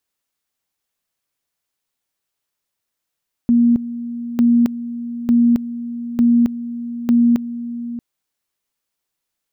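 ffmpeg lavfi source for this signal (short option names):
-f lavfi -i "aevalsrc='pow(10,(-9.5-14*gte(mod(t,0.9),0.27))/20)*sin(2*PI*237*t)':d=4.5:s=44100"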